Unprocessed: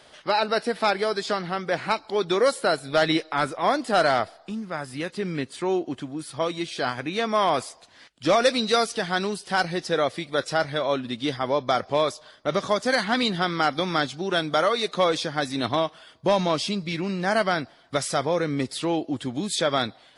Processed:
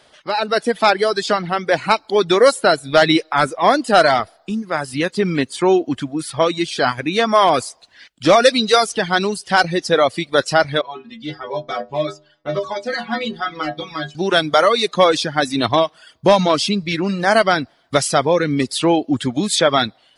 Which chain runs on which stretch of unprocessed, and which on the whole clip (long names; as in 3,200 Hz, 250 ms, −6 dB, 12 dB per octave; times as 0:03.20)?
0:10.81–0:14.15: high-frequency loss of the air 88 metres + stiff-string resonator 73 Hz, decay 0.51 s, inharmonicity 0.008
whole clip: reverb reduction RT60 0.96 s; automatic gain control gain up to 12 dB